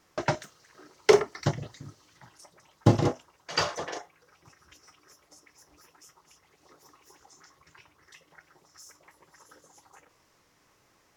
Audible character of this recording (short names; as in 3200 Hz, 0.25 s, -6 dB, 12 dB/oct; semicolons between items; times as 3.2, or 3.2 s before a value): noise floor -66 dBFS; spectral tilt -5.5 dB/oct